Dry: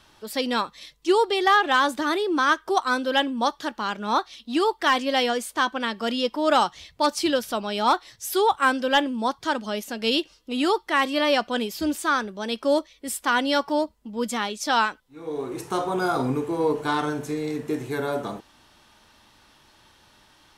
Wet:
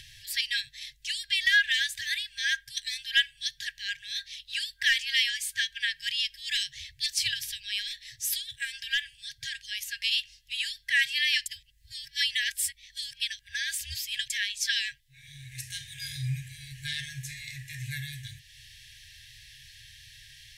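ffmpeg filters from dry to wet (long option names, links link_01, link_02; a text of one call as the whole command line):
ffmpeg -i in.wav -filter_complex "[0:a]asettb=1/sr,asplit=3[link_01][link_02][link_03];[link_01]atrim=end=7.314[link_04];[link_02]atrim=start=7.31:end=10.78,asetpts=PTS-STARTPTS,afade=type=in:duration=0.004:curve=qsin,afade=type=out:start_time=3.466:duration=0.004:curve=qsin,acompressor=threshold=-20dB:ratio=6:attack=3.2:release=140:knee=1:detection=peak[link_05];[link_03]atrim=start=10.776[link_06];[link_04][link_05]acrossfade=duration=0.004:curve1=hsin:curve2=qsin[link_07];[link_07][link_06]acrossfade=duration=0.004:curve1=qsin:curve2=hsin,asplit=3[link_08][link_09][link_10];[link_08]atrim=end=11.462[link_11];[link_09]atrim=start=11.458:end=14.302,asetpts=PTS-STARTPTS,areverse[link_12];[link_10]atrim=start=14.298[link_13];[link_11][link_12]acrossfade=duration=0.004:curve1=hsin:curve2=hsin[link_14];[link_14][link_13]acrossfade=duration=0.004:curve1=hsin:curve2=hsin,afftfilt=real='re*(1-between(b*sr/4096,150,1600))':imag='im*(1-between(b*sr/4096,150,1600))':win_size=4096:overlap=0.75,acompressor=mode=upward:threshold=-45dB:ratio=2.5,volume=2dB" out.wav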